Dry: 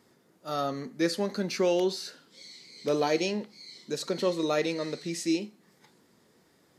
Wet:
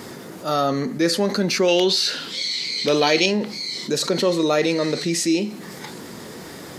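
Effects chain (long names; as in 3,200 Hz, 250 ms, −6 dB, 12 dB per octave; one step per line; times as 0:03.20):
0:01.68–0:03.26: parametric band 3,200 Hz +10.5 dB 1.6 octaves
envelope flattener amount 50%
level +5.5 dB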